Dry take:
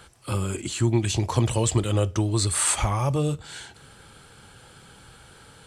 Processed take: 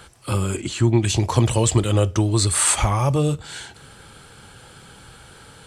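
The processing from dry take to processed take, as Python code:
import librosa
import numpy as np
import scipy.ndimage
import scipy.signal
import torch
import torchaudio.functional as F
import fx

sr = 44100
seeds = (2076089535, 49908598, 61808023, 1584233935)

y = fx.high_shelf(x, sr, hz=fx.line((0.57, 8900.0), (1.02, 6200.0)), db=-11.0, at=(0.57, 1.02), fade=0.02)
y = y * 10.0 ** (4.5 / 20.0)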